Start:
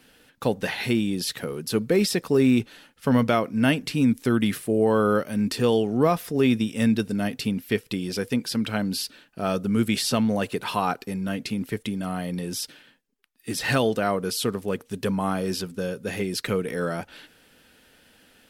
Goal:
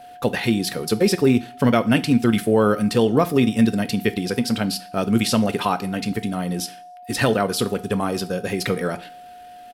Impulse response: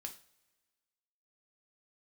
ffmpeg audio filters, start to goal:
-filter_complex "[0:a]atempo=1.9,aeval=exprs='val(0)+0.00631*sin(2*PI*720*n/s)':c=same,asplit=2[a][b];[1:a]atrim=start_sample=2205,afade=t=out:st=0.36:d=0.01,atrim=end_sample=16317,asetrate=41895,aresample=44100[c];[b][c]afir=irnorm=-1:irlink=0,volume=0.5dB[d];[a][d]amix=inputs=2:normalize=0"

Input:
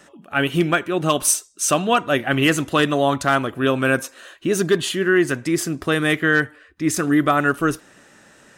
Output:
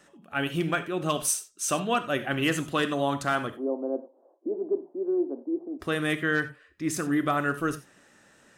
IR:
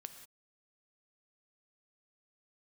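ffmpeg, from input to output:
-filter_complex "[0:a]asplit=3[a][b][c];[a]afade=t=out:st=3.55:d=0.02[d];[b]asuperpass=centerf=470:order=12:qfactor=0.73,afade=t=in:st=3.55:d=0.02,afade=t=out:st=5.79:d=0.02[e];[c]afade=t=in:st=5.79:d=0.02[f];[d][e][f]amix=inputs=3:normalize=0[g];[1:a]atrim=start_sample=2205,atrim=end_sample=4410[h];[g][h]afir=irnorm=-1:irlink=0,volume=-3dB"

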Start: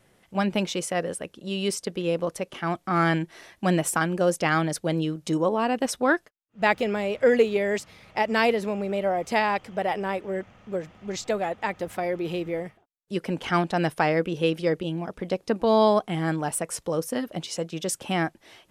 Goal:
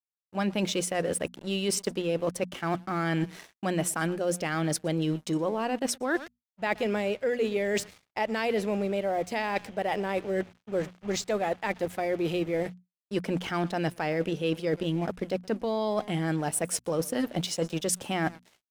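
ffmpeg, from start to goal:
-filter_complex "[0:a]aecho=1:1:120:0.0668,asplit=2[a][b];[b]alimiter=limit=-18dB:level=0:latency=1,volume=-2dB[c];[a][c]amix=inputs=2:normalize=0,aeval=exprs='sgn(val(0))*max(abs(val(0))-0.0075,0)':c=same,bandreject=f=60:t=h:w=6,bandreject=f=120:t=h:w=6,bandreject=f=180:t=h:w=6,bandreject=f=240:t=h:w=6,agate=range=-33dB:threshold=-43dB:ratio=3:detection=peak,areverse,acompressor=threshold=-27dB:ratio=6,areverse,adynamicequalizer=threshold=0.00501:dfrequency=1100:dqfactor=1.5:tfrequency=1100:tqfactor=1.5:attack=5:release=100:ratio=0.375:range=2.5:mode=cutabove:tftype=bell,volume=2dB"

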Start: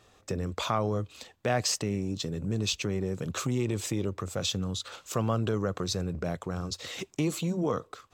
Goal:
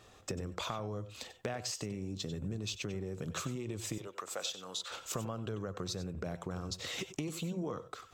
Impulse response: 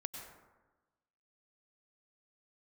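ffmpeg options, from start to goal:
-filter_complex "[0:a]asettb=1/sr,asplit=3[a][b][c];[a]atrim=end=3.984[d];[b]atrim=start=3.98:end=4.91,asetpts=PTS-STARTPTS,afade=t=in:d=0.004:c=qsin,afade=t=out:st=0.926:d=0.004:c=qsin,highpass=630[e];[c]atrim=start=4.906[f];[d][e]acrossfade=d=0.004:c1=hsin:c2=qsin[g];[g][f]acrossfade=d=0.004:c1=qsin:c2=hsin,acompressor=threshold=-37dB:ratio=6[h];[1:a]atrim=start_sample=2205,atrim=end_sample=4410[i];[h][i]afir=irnorm=-1:irlink=0,volume=4.5dB"

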